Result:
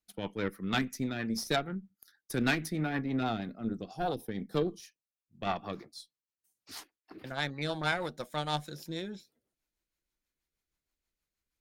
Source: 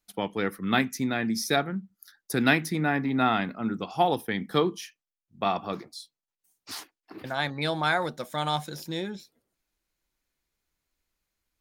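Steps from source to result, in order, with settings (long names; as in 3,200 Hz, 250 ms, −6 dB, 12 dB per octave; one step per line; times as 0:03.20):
gain on a spectral selection 0:03.23–0:05.12, 800–3,500 Hz −7 dB
tube saturation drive 17 dB, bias 0.75
rotating-speaker cabinet horn 6.3 Hz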